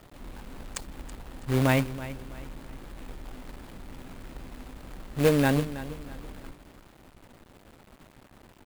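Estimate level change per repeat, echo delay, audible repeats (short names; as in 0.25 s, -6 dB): -8.5 dB, 0.327 s, 3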